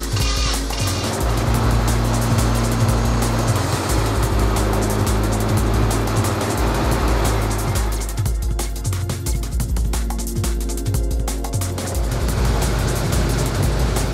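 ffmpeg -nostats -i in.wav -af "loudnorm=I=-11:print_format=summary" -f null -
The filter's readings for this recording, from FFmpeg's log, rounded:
Input Integrated:    -20.4 LUFS
Input True Peak:      -4.6 dBTP
Input LRA:             4.1 LU
Input Threshold:     -30.4 LUFS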